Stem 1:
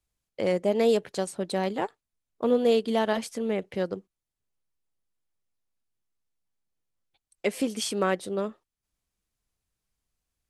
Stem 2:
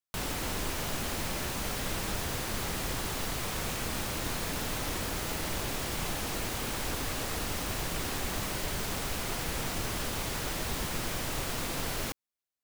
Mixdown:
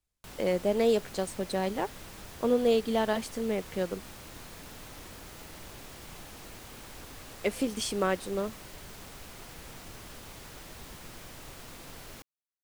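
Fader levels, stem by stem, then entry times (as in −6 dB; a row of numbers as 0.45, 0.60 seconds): −2.5, −12.5 decibels; 0.00, 0.10 seconds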